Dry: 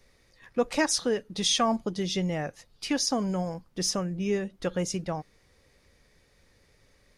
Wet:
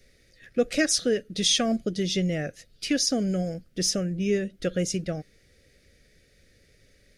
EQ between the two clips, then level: Butterworth band-stop 960 Hz, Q 1.2; +3.0 dB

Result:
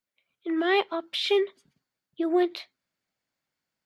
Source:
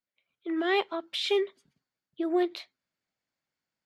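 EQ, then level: dynamic bell 7.4 kHz, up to -5 dB, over -53 dBFS, Q 1.7; +3.0 dB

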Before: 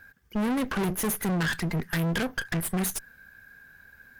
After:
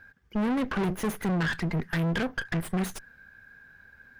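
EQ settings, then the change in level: treble shelf 5 kHz -7 dB; peaking EQ 14 kHz -9 dB 1.1 oct; 0.0 dB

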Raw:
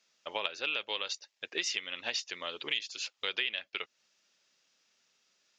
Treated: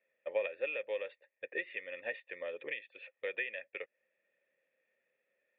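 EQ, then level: cascade formant filter e; +10.0 dB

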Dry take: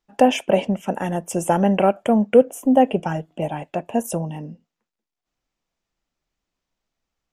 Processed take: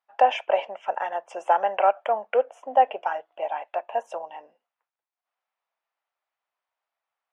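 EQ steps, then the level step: high-pass 710 Hz 24 dB/octave; tape spacing loss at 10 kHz 39 dB; +6.0 dB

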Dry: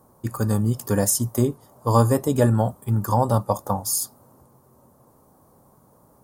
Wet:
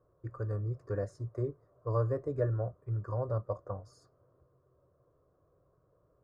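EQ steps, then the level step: dynamic bell 4.4 kHz, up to +5 dB, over -52 dBFS, Q 5.1; tape spacing loss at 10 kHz 43 dB; static phaser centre 850 Hz, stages 6; -8.0 dB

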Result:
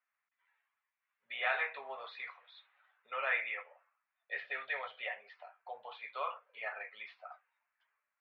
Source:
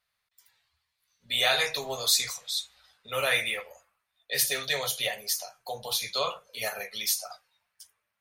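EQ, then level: high-pass 1 kHz 12 dB/octave; low-pass 2.5 kHz 24 dB/octave; distance through air 440 m; 0.0 dB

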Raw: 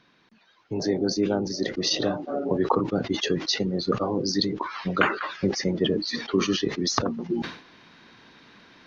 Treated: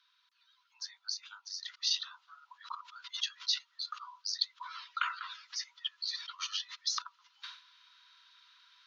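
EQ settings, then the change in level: rippled Chebyshev high-pass 950 Hz, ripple 9 dB; treble shelf 3.8 kHz +8 dB; -7.5 dB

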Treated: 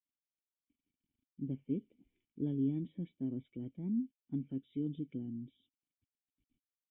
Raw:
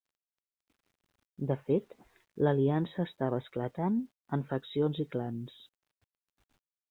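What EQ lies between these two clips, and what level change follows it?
cascade formant filter i; bass shelf 320 Hz +10.5 dB; treble shelf 2.4 kHz +10 dB; -6.5 dB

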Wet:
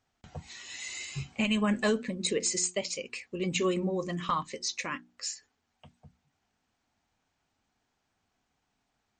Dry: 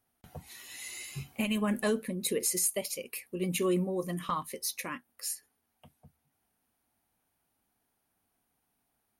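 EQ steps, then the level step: brick-wall FIR low-pass 8.2 kHz; peaking EQ 440 Hz -3.5 dB 2.8 oct; hum notches 60/120/180/240/300/360 Hz; +5.0 dB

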